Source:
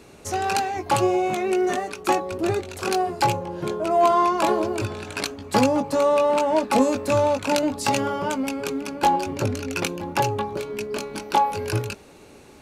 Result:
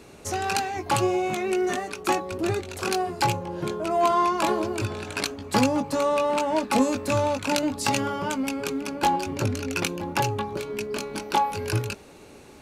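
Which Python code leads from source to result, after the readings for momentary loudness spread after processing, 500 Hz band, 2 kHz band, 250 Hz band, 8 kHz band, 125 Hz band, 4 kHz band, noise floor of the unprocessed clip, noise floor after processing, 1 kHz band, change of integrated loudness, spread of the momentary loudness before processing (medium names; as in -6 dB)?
8 LU, -4.0 dB, -0.5 dB, -1.5 dB, 0.0 dB, 0.0 dB, 0.0 dB, -48 dBFS, -48 dBFS, -3.0 dB, -2.5 dB, 10 LU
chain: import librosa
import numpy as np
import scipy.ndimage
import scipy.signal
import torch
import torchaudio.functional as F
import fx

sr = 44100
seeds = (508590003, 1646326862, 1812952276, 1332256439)

y = fx.dynamic_eq(x, sr, hz=580.0, q=0.92, threshold_db=-31.0, ratio=4.0, max_db=-5)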